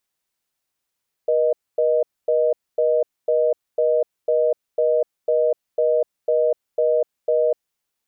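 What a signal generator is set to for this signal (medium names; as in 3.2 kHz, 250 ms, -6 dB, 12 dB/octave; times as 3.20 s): call progress tone reorder tone, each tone -18 dBFS 6.38 s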